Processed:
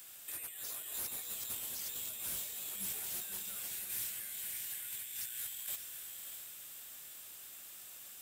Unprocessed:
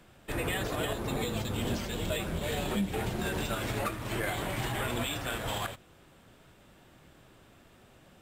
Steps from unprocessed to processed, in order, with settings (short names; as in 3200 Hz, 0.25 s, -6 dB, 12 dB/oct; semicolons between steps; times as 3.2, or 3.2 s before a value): pre-emphasis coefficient 0.97; spectral gain 3.68–5.68, 210–1400 Hz -9 dB; high shelf 6700 Hz +10.5 dB; negative-ratio compressor -46 dBFS, ratio -1; hard clip -37.5 dBFS, distortion -13 dB; diffused feedback echo 0.618 s, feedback 43%, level -6 dB; gain +3 dB